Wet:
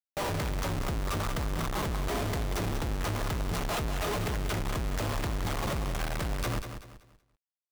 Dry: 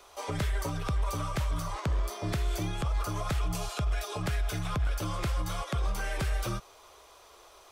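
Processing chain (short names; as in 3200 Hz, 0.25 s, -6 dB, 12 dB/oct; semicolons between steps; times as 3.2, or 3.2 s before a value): Schmitt trigger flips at -38 dBFS; lo-fi delay 0.19 s, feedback 35%, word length 11-bit, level -9 dB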